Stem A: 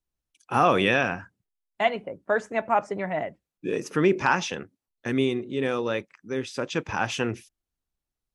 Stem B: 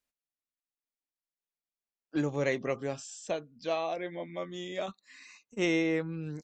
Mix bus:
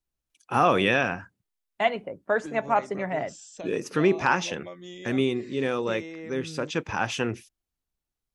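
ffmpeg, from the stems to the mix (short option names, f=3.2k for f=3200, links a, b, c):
-filter_complex "[0:a]volume=-0.5dB[a];[1:a]acompressor=threshold=-34dB:ratio=10,adelay=300,volume=-1.5dB[b];[a][b]amix=inputs=2:normalize=0"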